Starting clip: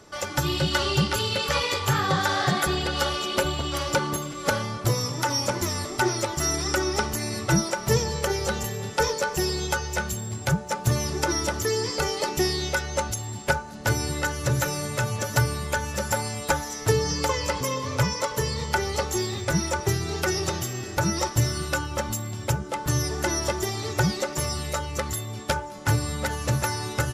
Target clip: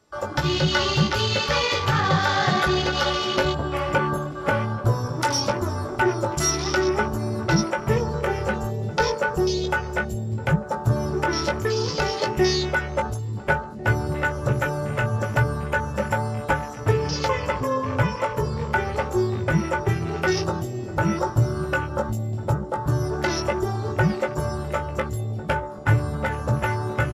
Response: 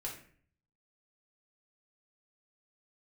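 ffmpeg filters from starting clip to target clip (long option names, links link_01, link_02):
-filter_complex "[0:a]bandreject=frequency=6200:width=22,afwtdn=0.0224,asplit=2[link_01][link_02];[link_02]alimiter=limit=-17dB:level=0:latency=1,volume=-3dB[link_03];[link_01][link_03]amix=inputs=2:normalize=0,asplit=2[link_04][link_05];[link_05]adelay=19,volume=-6dB[link_06];[link_04][link_06]amix=inputs=2:normalize=0,asplit=2[link_07][link_08];[link_08]adelay=1399,volume=-18dB,highshelf=frequency=4000:gain=-31.5[link_09];[link_07][link_09]amix=inputs=2:normalize=0,volume=-1.5dB"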